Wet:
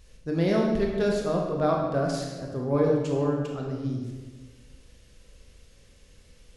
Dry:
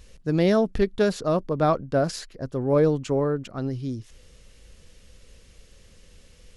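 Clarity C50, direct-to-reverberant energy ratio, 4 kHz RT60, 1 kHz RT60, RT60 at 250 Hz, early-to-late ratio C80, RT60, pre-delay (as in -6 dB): 2.0 dB, -1.0 dB, 0.95 s, 1.2 s, 1.7 s, 4.5 dB, 1.4 s, 19 ms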